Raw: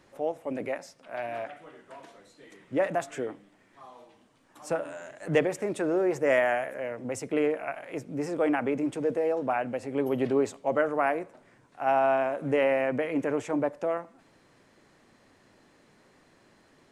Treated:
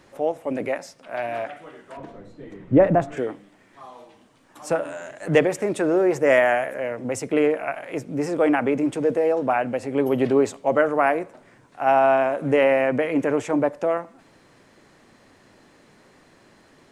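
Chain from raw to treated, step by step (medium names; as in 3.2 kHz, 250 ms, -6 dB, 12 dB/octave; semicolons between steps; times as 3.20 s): 1.97–3.17 s: tilt EQ -4.5 dB/octave; trim +6.5 dB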